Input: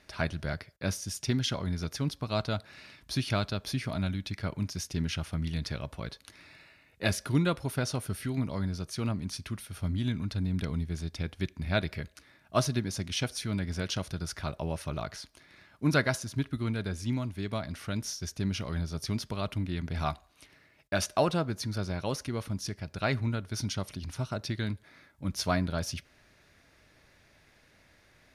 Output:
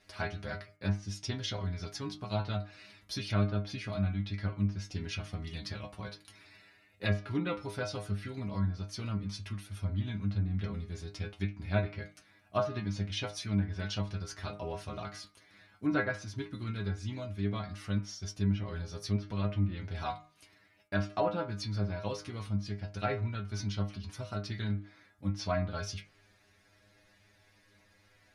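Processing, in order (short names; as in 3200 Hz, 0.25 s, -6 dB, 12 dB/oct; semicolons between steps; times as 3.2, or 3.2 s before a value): metallic resonator 100 Hz, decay 0.28 s, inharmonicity 0.002; treble ducked by the level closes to 2000 Hz, closed at -32.5 dBFS; de-hum 153.2 Hz, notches 19; gain +6 dB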